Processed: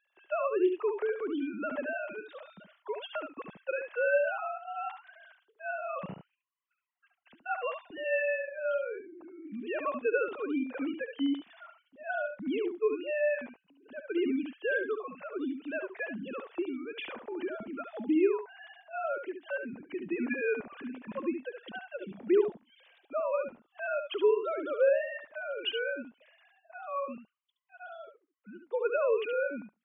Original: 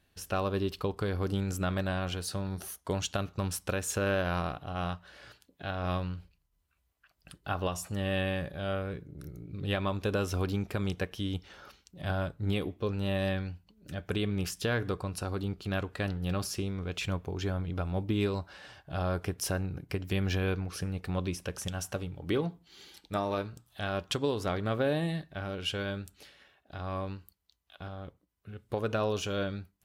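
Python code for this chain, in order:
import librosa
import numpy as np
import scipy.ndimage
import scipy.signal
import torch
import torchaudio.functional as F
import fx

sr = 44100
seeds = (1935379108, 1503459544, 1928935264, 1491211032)

p1 = fx.sine_speech(x, sr)
p2 = fx.hpss(p1, sr, part='harmonic', gain_db=6)
p3 = p2 + fx.echo_single(p2, sr, ms=71, db=-7.5, dry=0)
y = p3 * 10.0 ** (-6.0 / 20.0)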